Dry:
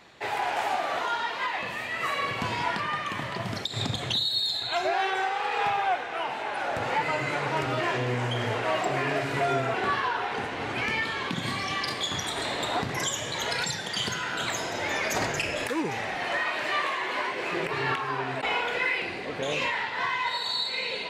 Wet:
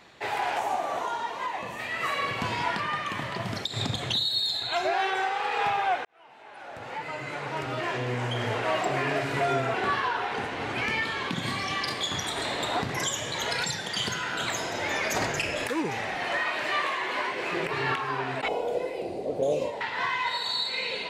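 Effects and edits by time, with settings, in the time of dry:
0:00.59–0:01.79: gain on a spectral selection 1,200–5,500 Hz −7 dB
0:06.05–0:08.61: fade in
0:18.48–0:19.81: drawn EQ curve 220 Hz 0 dB, 620 Hz +8 dB, 1,100 Hz −13 dB, 1,700 Hz −22 dB, 10,000 Hz 0 dB

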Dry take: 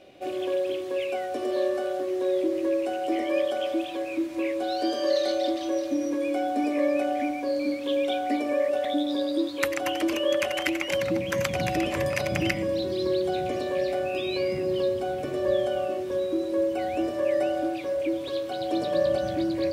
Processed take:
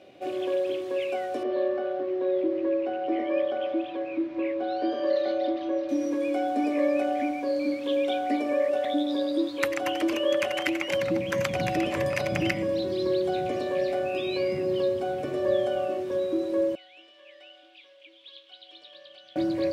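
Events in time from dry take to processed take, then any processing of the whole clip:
0:01.43–0:05.89: high-frequency loss of the air 270 metres
0:16.75–0:19.36: resonant band-pass 3,200 Hz, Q 5
whole clip: high-pass filter 91 Hz; high-shelf EQ 5,200 Hz −6 dB

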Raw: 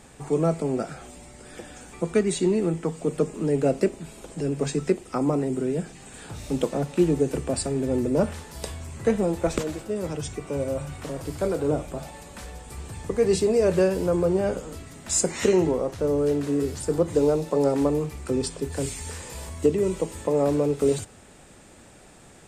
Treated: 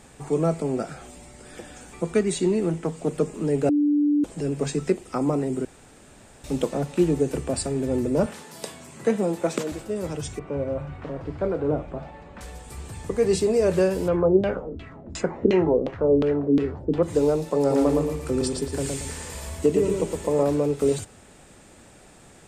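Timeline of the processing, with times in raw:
0:02.69–0:03.15: highs frequency-modulated by the lows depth 0.24 ms
0:03.69–0:04.24: beep over 293 Hz −17 dBFS
0:05.65–0:06.44: fill with room tone
0:08.26–0:09.72: high-pass filter 150 Hz 24 dB per octave
0:10.39–0:12.41: low-pass filter 2,100 Hz
0:14.08–0:17.03: auto-filter low-pass saw down 2.8 Hz 230–3,500 Hz
0:17.59–0:20.43: repeating echo 114 ms, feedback 33%, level −3.5 dB

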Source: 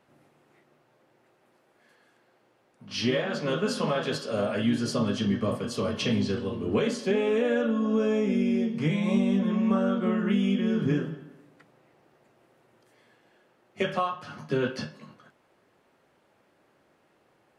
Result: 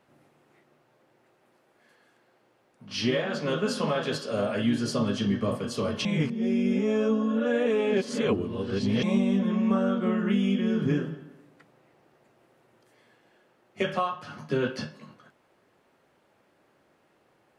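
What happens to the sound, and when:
0:06.05–0:09.03: reverse

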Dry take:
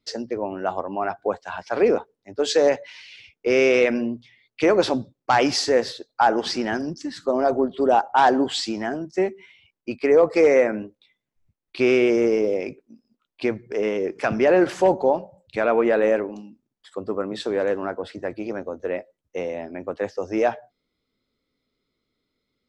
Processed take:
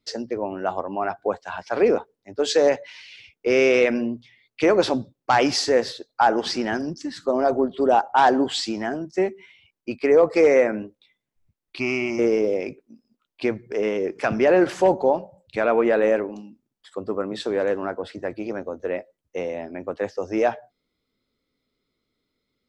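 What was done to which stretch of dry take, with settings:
0:11.79–0:12.19: phaser with its sweep stopped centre 2,400 Hz, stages 8

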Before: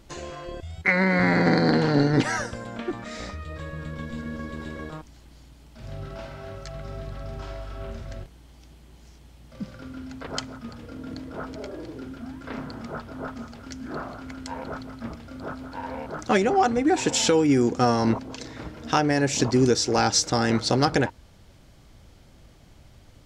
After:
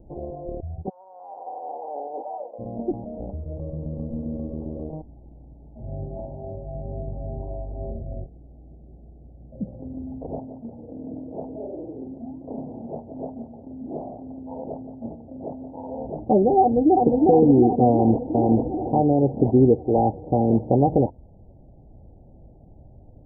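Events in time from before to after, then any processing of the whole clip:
0:00.88–0:02.58: high-pass filter 1,300 Hz → 510 Hz 24 dB per octave
0:07.91–0:09.67: Butterworth low-pass 770 Hz 48 dB per octave
0:10.39–0:16.00: high-pass filter 200 Hz 6 dB per octave
0:16.60–0:17.23: delay throw 360 ms, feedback 65%, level −1.5 dB
0:17.90–0:18.46: delay throw 440 ms, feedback 25%, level −1 dB
whole clip: Butterworth low-pass 820 Hz 72 dB per octave; level +4 dB

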